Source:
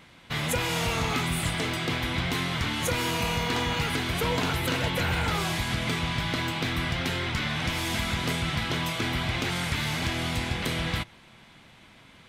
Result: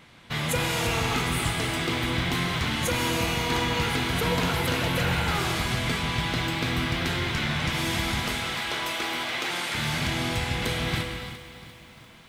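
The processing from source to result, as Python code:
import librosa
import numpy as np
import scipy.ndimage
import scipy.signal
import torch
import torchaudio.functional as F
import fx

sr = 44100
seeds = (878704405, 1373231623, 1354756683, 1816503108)

y = fx.highpass(x, sr, hz=400.0, slope=12, at=(8.22, 9.75))
y = fx.rev_gated(y, sr, seeds[0], gate_ms=350, shape='flat', drr_db=4.0)
y = fx.echo_crushed(y, sr, ms=346, feedback_pct=55, bits=8, wet_db=-13.5)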